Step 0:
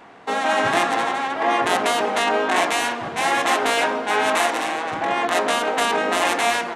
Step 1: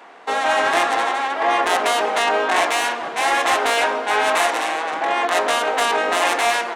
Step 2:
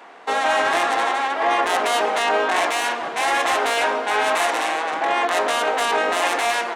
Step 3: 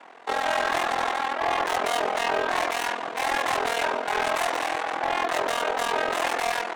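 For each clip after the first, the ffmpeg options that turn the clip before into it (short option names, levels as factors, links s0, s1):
-af "highpass=390,acontrast=68,volume=0.631"
-af "alimiter=limit=0.282:level=0:latency=1:release=15"
-af "aeval=exprs='val(0)*sin(2*PI*21*n/s)':c=same,asoftclip=type=hard:threshold=0.133,volume=0.841"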